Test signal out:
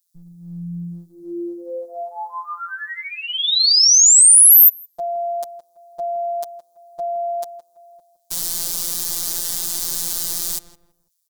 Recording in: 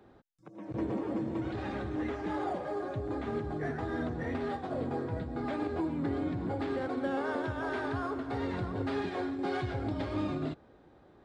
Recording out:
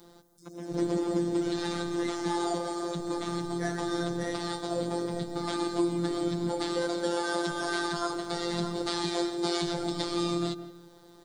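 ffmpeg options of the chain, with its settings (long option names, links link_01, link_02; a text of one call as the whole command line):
ffmpeg -i in.wav -filter_complex "[0:a]afftfilt=real='hypot(re,im)*cos(PI*b)':imag='0':win_size=1024:overlap=0.75,aexciter=amount=9.7:drive=2.6:freq=3700,asplit=2[link_01][link_02];[link_02]adelay=165,lowpass=frequency=1300:poles=1,volume=-11dB,asplit=2[link_03][link_04];[link_04]adelay=165,lowpass=frequency=1300:poles=1,volume=0.32,asplit=2[link_05][link_06];[link_06]adelay=165,lowpass=frequency=1300:poles=1,volume=0.32[link_07];[link_01][link_03][link_05][link_07]amix=inputs=4:normalize=0,volume=7dB" out.wav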